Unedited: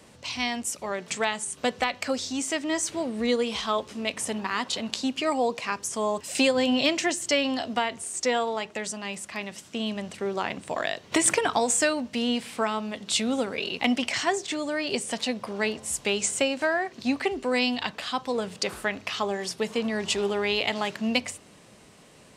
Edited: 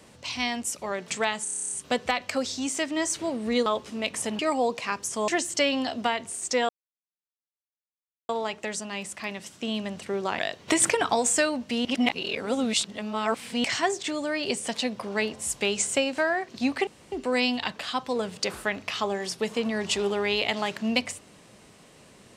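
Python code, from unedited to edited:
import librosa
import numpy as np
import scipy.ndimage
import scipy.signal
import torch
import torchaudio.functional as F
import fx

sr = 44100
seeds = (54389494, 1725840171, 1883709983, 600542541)

y = fx.edit(x, sr, fx.stutter(start_s=1.44, slice_s=0.03, count=10),
    fx.cut(start_s=3.39, length_s=0.3),
    fx.cut(start_s=4.42, length_s=0.77),
    fx.cut(start_s=6.08, length_s=0.92),
    fx.insert_silence(at_s=8.41, length_s=1.6),
    fx.cut(start_s=10.51, length_s=0.32),
    fx.reverse_span(start_s=12.29, length_s=1.79),
    fx.insert_room_tone(at_s=17.31, length_s=0.25), tone=tone)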